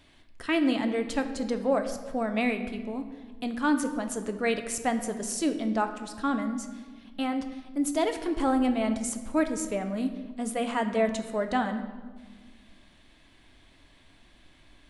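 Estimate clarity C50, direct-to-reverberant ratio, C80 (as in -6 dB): 9.5 dB, 6.5 dB, 11.0 dB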